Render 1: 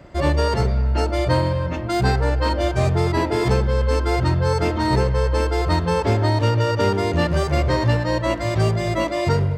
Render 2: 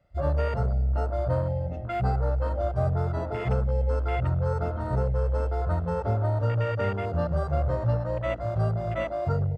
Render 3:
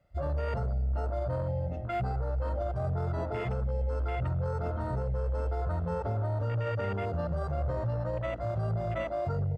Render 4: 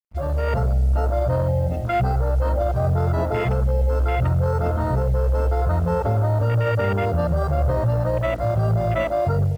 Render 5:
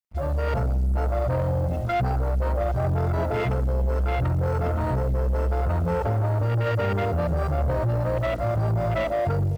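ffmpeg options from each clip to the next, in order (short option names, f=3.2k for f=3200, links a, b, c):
-af "aecho=1:1:1.5:0.65,afwtdn=0.0631,volume=-9dB"
-af "alimiter=limit=-22.5dB:level=0:latency=1:release=16,volume=-2dB"
-af "dynaudnorm=f=270:g=3:m=4.5dB,acrusher=bits=8:mix=0:aa=0.5,volume=6.5dB"
-af "asoftclip=type=tanh:threshold=-19dB"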